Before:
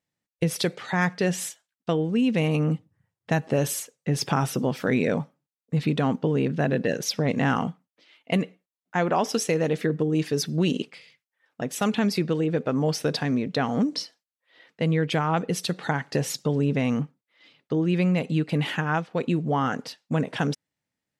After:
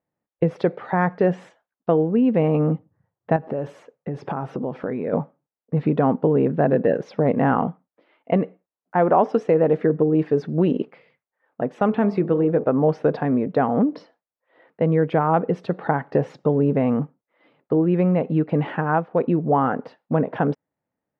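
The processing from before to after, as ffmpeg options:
-filter_complex "[0:a]asettb=1/sr,asplit=3[a][b][c];[a]atrim=end=3.364[d];[b]atrim=start=3.36:end=5.13,asetpts=PTS-STARTPTS,afade=t=in:d=0.004:c=qsin,afade=t=out:st=1.766:d=0.004:c=qsin,acompressor=threshold=-27dB:ratio=6:attack=3.2:release=140:knee=1:detection=peak[e];[c]atrim=start=5.126[f];[d][e]acrossfade=d=0.004:c1=hsin:c2=qsin[g];[g][f]acrossfade=d=0.004:c1=qsin:c2=hsin,asettb=1/sr,asplit=3[h][i][j];[h]atrim=end=11.864[k];[i]atrim=start=11.86:end=12.64,asetpts=PTS-STARTPTS,afade=t=in:d=0.004:c=qsin,afade=t=out:st=0.776:d=0.004:c=qsin,bandreject=f=48.8:t=h:w=4,bandreject=f=97.6:t=h:w=4,bandreject=f=146.4:t=h:w=4,bandreject=f=195.2:t=h:w=4,bandreject=f=244:t=h:w=4,bandreject=f=292.8:t=h:w=4,bandreject=f=341.6:t=h:w=4,bandreject=f=390.4:t=h:w=4,bandreject=f=439.2:t=h:w=4,bandreject=f=488:t=h:w=4,bandreject=f=536.8:t=h:w=4,bandreject=f=585.6:t=h:w=4,bandreject=f=634.4:t=h:w=4,bandreject=f=683.2:t=h:w=4,bandreject=f=732:t=h:w=4,bandreject=f=780.8:t=h:w=4,bandreject=f=829.6:t=h:w=4,bandreject=f=878.4:t=h:w=4,bandreject=f=927.2:t=h:w=4,bandreject=f=976:t=h:w=4,bandreject=f=1.0248k:t=h:w=4,bandreject=f=1.0736k:t=h:w=4,bandreject=f=1.1224k:t=h:w=4,bandreject=f=1.1712k:t=h:w=4,bandreject=f=1.22k:t=h:w=4,bandreject=f=1.2688k:t=h:w=4[l];[j]atrim=start=12.636[m];[k][l]acrossfade=d=0.004:c1=hsin:c2=qsin[n];[n][m]acrossfade=d=0.004:c1=qsin:c2=hsin,lowpass=1.4k,equalizer=f=610:w=0.49:g=8"

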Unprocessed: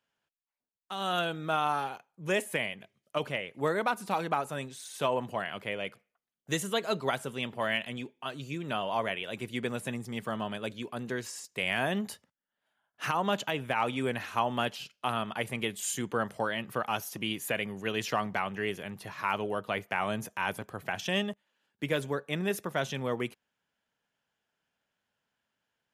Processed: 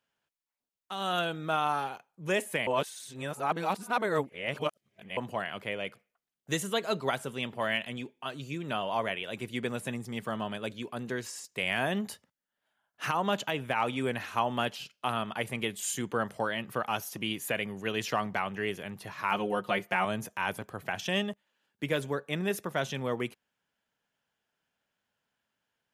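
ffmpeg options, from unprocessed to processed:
-filter_complex "[0:a]asettb=1/sr,asplit=3[a][b][c];[a]atrim=end=19.314[d];[b]atrim=start=19.31:end=20.05,asetpts=PTS-STARTPTS,afade=t=in:d=0.004:c=qsin,afade=t=out:st=0.736:d=0.004:c=qsin,aecho=1:1:5.6:0.95,atrim=end_sample=32634[e];[c]atrim=start=20.046[f];[d][e]acrossfade=d=0.004:c1=hsin:c2=qsin[g];[g][f]acrossfade=d=0.004:c1=qsin:c2=hsin,asplit=3[h][i][j];[h]atrim=end=2.672[k];[i]atrim=start=2.668:end=5.172,asetpts=PTS-STARTPTS,areverse[l];[j]atrim=start=5.168[m];[k][l]acrossfade=d=0.004:c1=hsin:c2=hsin[n];[n][m]acrossfade=d=0.004:c1=hsin:c2=hsin"

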